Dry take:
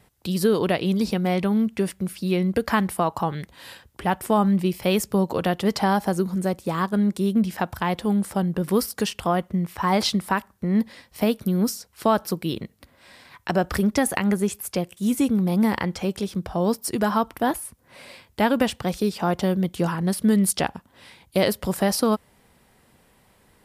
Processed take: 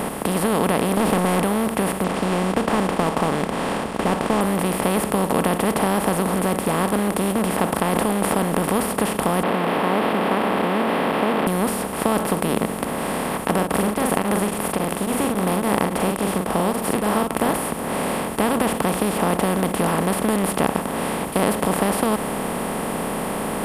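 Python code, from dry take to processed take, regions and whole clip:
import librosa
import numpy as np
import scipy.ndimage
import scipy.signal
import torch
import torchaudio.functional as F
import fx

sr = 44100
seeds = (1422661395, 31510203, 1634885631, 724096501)

y = fx.chain(x, sr, fx.lowpass(hz=3400.0, slope=12),
    fx.leveller(passes=3), at=(0.97, 1.43))
y = fx.chain(y, sr, fx.cvsd(bps=32000),
    fx.peak_eq(hz=1900.0, db=-3.5, octaves=0.26), at=(2.04, 4.41))
y = fx.chain(y, sr, fx.low_shelf(hz=350.0, db=-3.5),
    fx.sustainer(db_per_s=52.0), at=(7.75, 8.55))
y = fx.chain(y, sr, fx.delta_mod(bps=16000, step_db=-22.5),
    fx.highpass(hz=290.0, slope=24), at=(9.43, 11.47))
y = fx.chain(y, sr, fx.doubler(ms=43.0, db=-10.5),
    fx.tremolo_abs(hz=3.6), at=(13.54, 17.49))
y = fx.bin_compress(y, sr, power=0.2)
y = fx.peak_eq(y, sr, hz=5400.0, db=-10.5, octaves=0.77)
y = y * 10.0 ** (-7.5 / 20.0)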